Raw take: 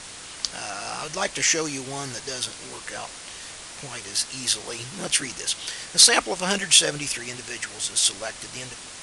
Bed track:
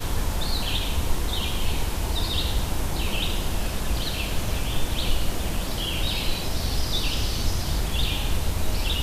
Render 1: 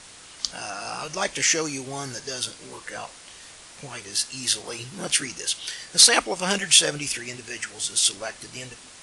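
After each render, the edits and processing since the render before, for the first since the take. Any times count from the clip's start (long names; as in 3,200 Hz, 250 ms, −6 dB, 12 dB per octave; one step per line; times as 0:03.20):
noise reduction from a noise print 6 dB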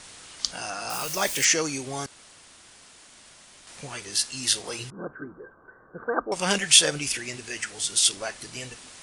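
0:00.90–0:01.45: spike at every zero crossing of −26.5 dBFS
0:02.06–0:03.67: fill with room tone
0:04.90–0:06.32: Chebyshev low-pass with heavy ripple 1,600 Hz, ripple 6 dB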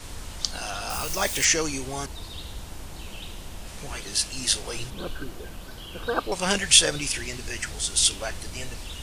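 mix in bed track −13 dB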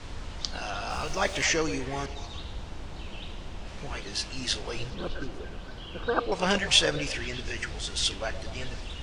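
high-frequency loss of the air 130 metres
echo through a band-pass that steps 122 ms, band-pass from 480 Hz, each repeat 0.7 octaves, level −9 dB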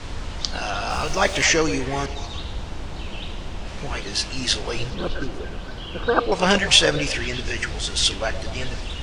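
level +7.5 dB
brickwall limiter −2 dBFS, peak gain reduction 2 dB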